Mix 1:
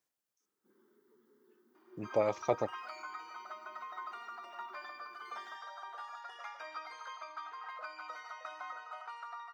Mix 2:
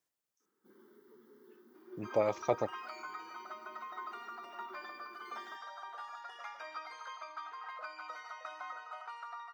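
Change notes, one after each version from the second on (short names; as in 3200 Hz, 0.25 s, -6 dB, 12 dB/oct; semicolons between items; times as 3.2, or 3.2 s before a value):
first sound +8.0 dB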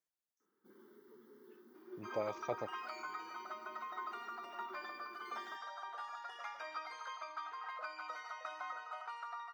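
speech -8.5 dB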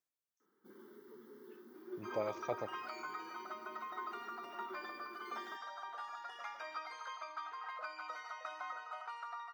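first sound +4.5 dB; reverb: on, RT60 0.50 s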